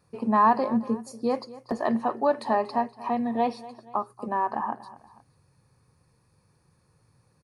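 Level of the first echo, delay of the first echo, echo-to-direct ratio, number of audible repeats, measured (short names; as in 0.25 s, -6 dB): -18.0 dB, 0.238 s, -17.0 dB, 2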